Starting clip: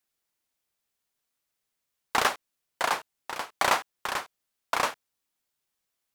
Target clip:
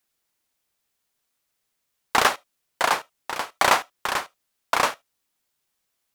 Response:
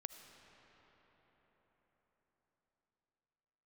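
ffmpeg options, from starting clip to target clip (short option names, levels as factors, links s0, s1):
-filter_complex "[0:a]asplit=2[s0][s1];[1:a]atrim=start_sample=2205,atrim=end_sample=3528[s2];[s1][s2]afir=irnorm=-1:irlink=0,volume=1.5[s3];[s0][s3]amix=inputs=2:normalize=0"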